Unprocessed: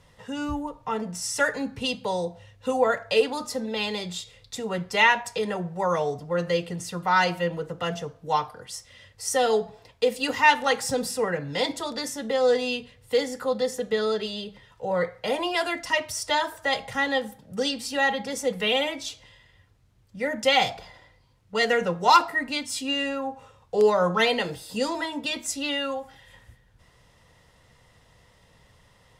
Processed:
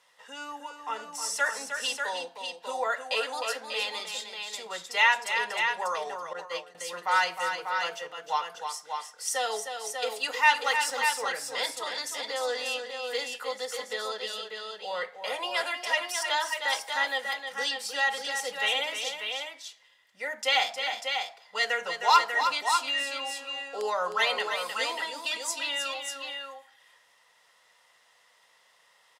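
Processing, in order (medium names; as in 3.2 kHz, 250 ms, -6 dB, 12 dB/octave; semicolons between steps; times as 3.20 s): multi-tap echo 310/592 ms -7.5/-6 dB; 6.33–6.75 s: expander -18 dBFS; high-pass 830 Hz 12 dB/octave; trim -2 dB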